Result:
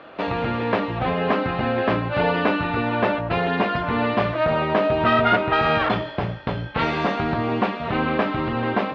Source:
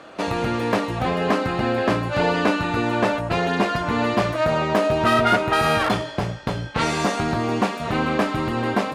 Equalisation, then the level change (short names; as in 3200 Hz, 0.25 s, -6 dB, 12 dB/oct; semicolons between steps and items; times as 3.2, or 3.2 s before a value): LPF 3600 Hz 24 dB/oct; notches 50/100/150/200/250/300/350 Hz; 0.0 dB